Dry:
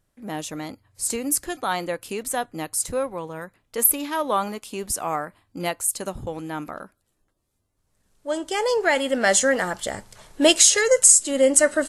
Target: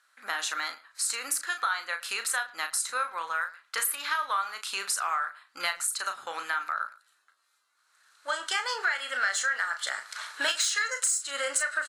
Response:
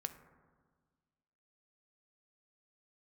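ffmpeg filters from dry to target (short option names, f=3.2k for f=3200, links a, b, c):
-filter_complex "[0:a]lowpass=10k,equalizer=f=4.1k:t=o:w=0.22:g=8.5,acontrast=50,highpass=f=1.4k:t=q:w=4.4,acompressor=threshold=-28dB:ratio=5,asplit=2[a][b];[b]adelay=36,volume=-8dB[c];[a][c]amix=inputs=2:normalize=0,asplit=2[d][e];[e]adelay=110,highpass=300,lowpass=3.4k,asoftclip=type=hard:threshold=-23dB,volume=-19dB[f];[d][f]amix=inputs=2:normalize=0"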